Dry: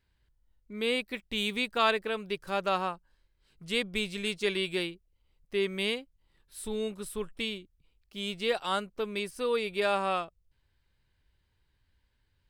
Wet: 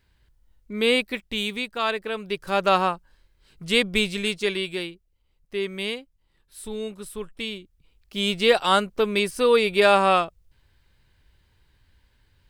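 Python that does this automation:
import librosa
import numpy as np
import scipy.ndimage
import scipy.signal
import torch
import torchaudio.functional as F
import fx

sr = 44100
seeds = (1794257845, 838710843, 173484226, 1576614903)

y = fx.gain(x, sr, db=fx.line((0.99, 9.0), (1.77, -0.5), (2.71, 9.5), (4.0, 9.5), (4.77, 1.5), (7.37, 1.5), (8.19, 11.0)))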